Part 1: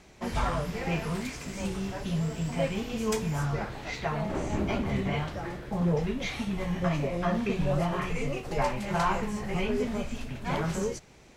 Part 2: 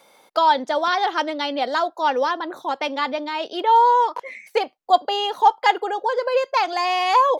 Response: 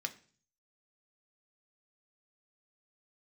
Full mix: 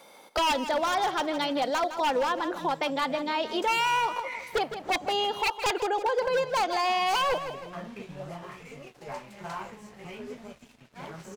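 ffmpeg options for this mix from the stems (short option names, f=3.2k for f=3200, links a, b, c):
-filter_complex "[0:a]highpass=f=220:p=1,aeval=exprs='sgn(val(0))*max(abs(val(0))-0.00631,0)':c=same,flanger=delay=4.4:depth=4.8:regen=-62:speed=1.8:shape=triangular,adelay=500,volume=-4.5dB,asplit=3[a][b][c];[a]atrim=end=5.41,asetpts=PTS-STARTPTS,afade=t=out:st=5.406:d=0.004:c=hsin[d];[b]atrim=start=5.41:end=6.19,asetpts=PTS-STARTPTS,volume=0[e];[c]atrim=start=6.19,asetpts=PTS-STARTPTS,afade=t=in:d=0.004:c=hsin[f];[d][e][f]concat=n=3:v=0:a=1[g];[1:a]equalizer=f=220:t=o:w=2.2:g=2,aeval=exprs='0.178*(abs(mod(val(0)/0.178+3,4)-2)-1)':c=same,volume=1dB,asplit=2[h][i];[i]volume=-12.5dB,aecho=0:1:160|320|480|640|800:1|0.32|0.102|0.0328|0.0105[j];[g][h][j]amix=inputs=3:normalize=0,alimiter=limit=-19dB:level=0:latency=1:release=417"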